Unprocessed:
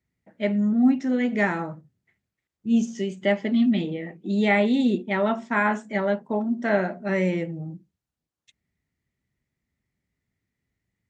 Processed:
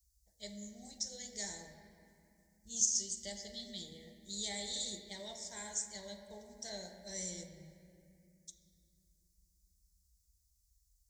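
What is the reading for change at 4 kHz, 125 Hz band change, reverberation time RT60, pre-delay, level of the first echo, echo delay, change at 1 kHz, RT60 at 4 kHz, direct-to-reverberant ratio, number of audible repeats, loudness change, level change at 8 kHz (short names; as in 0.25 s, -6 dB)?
-2.5 dB, -24.5 dB, 2.5 s, 3 ms, none, none, -26.5 dB, 1.8 s, 5.0 dB, none, -16.0 dB, n/a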